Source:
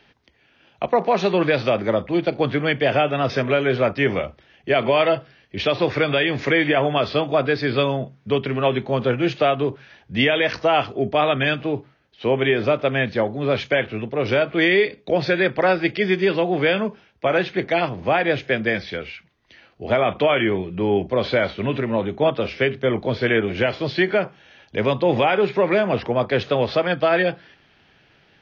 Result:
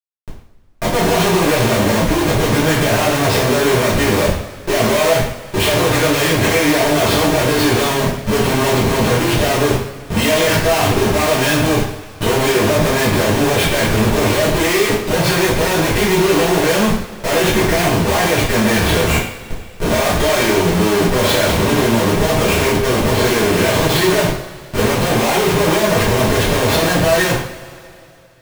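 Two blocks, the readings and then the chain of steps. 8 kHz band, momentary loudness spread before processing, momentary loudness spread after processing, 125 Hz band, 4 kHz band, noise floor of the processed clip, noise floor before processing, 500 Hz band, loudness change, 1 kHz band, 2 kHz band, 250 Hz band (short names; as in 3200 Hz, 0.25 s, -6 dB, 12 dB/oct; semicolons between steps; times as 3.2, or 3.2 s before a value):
n/a, 6 LU, 5 LU, +9.5 dB, +9.0 dB, -37 dBFS, -58 dBFS, +4.0 dB, +6.0 dB, +6.0 dB, +5.0 dB, +7.5 dB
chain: Schmitt trigger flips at -35 dBFS; two-slope reverb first 0.55 s, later 2.7 s, from -19 dB, DRR -8.5 dB; gain -2.5 dB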